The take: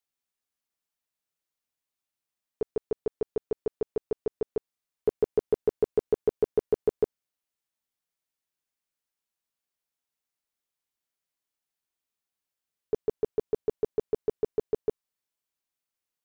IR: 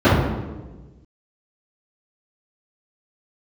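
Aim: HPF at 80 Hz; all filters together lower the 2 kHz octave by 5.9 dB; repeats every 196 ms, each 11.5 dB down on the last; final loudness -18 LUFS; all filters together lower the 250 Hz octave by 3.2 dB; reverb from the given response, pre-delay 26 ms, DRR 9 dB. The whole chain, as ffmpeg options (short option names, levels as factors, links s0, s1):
-filter_complex "[0:a]highpass=80,equalizer=f=250:t=o:g=-5,equalizer=f=2000:t=o:g=-8,aecho=1:1:196|392|588:0.266|0.0718|0.0194,asplit=2[s0][s1];[1:a]atrim=start_sample=2205,adelay=26[s2];[s1][s2]afir=irnorm=-1:irlink=0,volume=0.0168[s3];[s0][s3]amix=inputs=2:normalize=0,volume=5.01"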